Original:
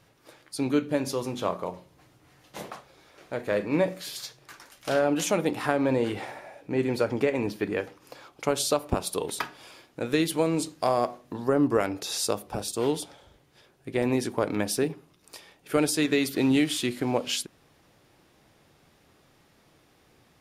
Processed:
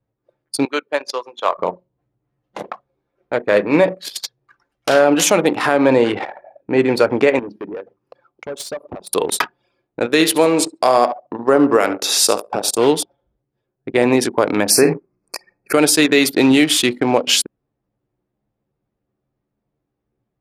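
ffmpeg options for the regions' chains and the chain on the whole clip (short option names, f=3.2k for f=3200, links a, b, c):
-filter_complex "[0:a]asettb=1/sr,asplit=3[a][b][c];[a]atrim=end=0.654[d];[b]atrim=start=0.65:end=1.58,asetpts=PTS-STARTPTS,afade=t=in:d=0.004:c=qsin,afade=t=out:st=0.926:d=0.004:c=qsin,acrossover=split=6700[e][f];[f]acompressor=threshold=-50dB:ratio=4:attack=1:release=60[g];[e][g]amix=inputs=2:normalize=0,highpass=710[h];[c]atrim=start=1.576[i];[d][h]acrossfade=d=0.004:c1=hsin:c2=qsin[j];[j][i]acrossfade=d=0.004:c1=qsin:c2=hsin,asettb=1/sr,asplit=3[k][l][m];[k]atrim=end=7.394[n];[l]atrim=start=7.39:end=9.09,asetpts=PTS-STARTPTS,afade=t=in:d=0.004:c=qsin,afade=t=out:st=1.696:d=0.004:c=qsin,highpass=41,volume=27dB,asoftclip=hard,volume=-27dB,acompressor=threshold=-38dB:ratio=3:attack=3.2:release=140:knee=1:detection=peak[o];[m]atrim=start=9.086[p];[n][o]acrossfade=d=0.004:c1=hsin:c2=qsin[q];[q][p]acrossfade=d=0.004:c1=qsin:c2=hsin,asettb=1/sr,asplit=3[r][s][t];[r]atrim=end=10.064[u];[s]atrim=start=10.06:end=12.78,asetpts=PTS-STARTPTS,afade=t=in:d=0.004:c=qsin,afade=t=out:st=2.716:d=0.004:c=qsin,highpass=f=200:p=1,aecho=1:1:70|140|210|280:0.251|0.111|0.0486|0.0214,atrim=end_sample=119952[v];[t]atrim=start=12.776[w];[u][v]acrossfade=d=0.004:c1=hsin:c2=qsin[x];[x][w]acrossfade=d=0.004:c1=qsin:c2=hsin,asettb=1/sr,asplit=3[y][z][aa];[y]atrim=end=14.704[ab];[z]atrim=start=14.7:end=15.73,asetpts=PTS-STARTPTS,afade=t=in:d=0.004:c=qsin,afade=t=out:st=1.026:d=0.004:c=qsin,acontrast=39,asuperstop=centerf=3300:order=20:qfactor=2.2,asplit=2[ac][ad];[ad]adelay=50,volume=-9dB[ae];[ac][ae]amix=inputs=2:normalize=0,atrim=end_sample=45423[af];[aa]atrim=start=15.726[ag];[ab][af]acrossfade=d=0.004:c1=hsin:c2=qsin[ah];[ah][ag]acrossfade=d=0.004:c1=qsin:c2=hsin,anlmdn=3.98,highpass=f=350:p=1,alimiter=level_in=15.5dB:limit=-1dB:release=50:level=0:latency=1,volume=-1dB"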